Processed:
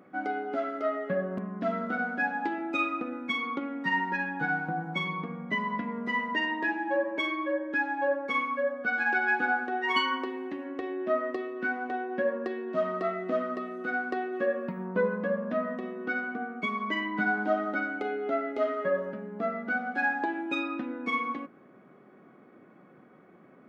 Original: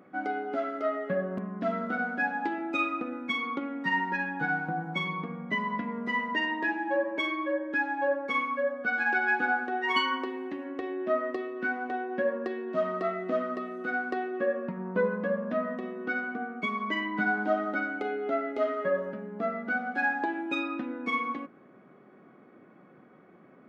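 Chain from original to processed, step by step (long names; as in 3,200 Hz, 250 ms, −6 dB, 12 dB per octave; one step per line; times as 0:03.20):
0:14.31–0:14.85: high-shelf EQ 5,300 Hz → 4,100 Hz +11.5 dB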